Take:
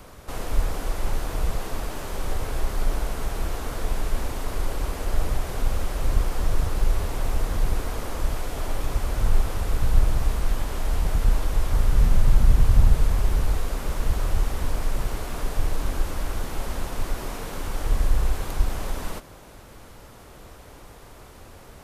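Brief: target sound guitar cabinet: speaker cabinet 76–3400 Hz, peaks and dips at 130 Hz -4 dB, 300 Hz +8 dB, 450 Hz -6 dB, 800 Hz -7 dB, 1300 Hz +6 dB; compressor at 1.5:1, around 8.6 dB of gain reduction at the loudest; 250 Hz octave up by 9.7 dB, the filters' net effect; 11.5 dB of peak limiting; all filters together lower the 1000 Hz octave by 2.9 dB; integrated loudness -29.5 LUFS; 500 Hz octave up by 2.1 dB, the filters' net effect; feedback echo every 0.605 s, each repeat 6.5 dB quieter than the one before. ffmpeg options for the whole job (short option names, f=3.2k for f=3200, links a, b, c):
-af "equalizer=f=250:t=o:g=7.5,equalizer=f=500:t=o:g=4.5,equalizer=f=1k:t=o:g=-5.5,acompressor=threshold=-34dB:ratio=1.5,alimiter=level_in=0.5dB:limit=-24dB:level=0:latency=1,volume=-0.5dB,highpass=76,equalizer=f=130:t=q:w=4:g=-4,equalizer=f=300:t=q:w=4:g=8,equalizer=f=450:t=q:w=4:g=-6,equalizer=f=800:t=q:w=4:g=-7,equalizer=f=1.3k:t=q:w=4:g=6,lowpass=f=3.4k:w=0.5412,lowpass=f=3.4k:w=1.3066,aecho=1:1:605|1210|1815|2420|3025|3630:0.473|0.222|0.105|0.0491|0.0231|0.0109,volume=8.5dB"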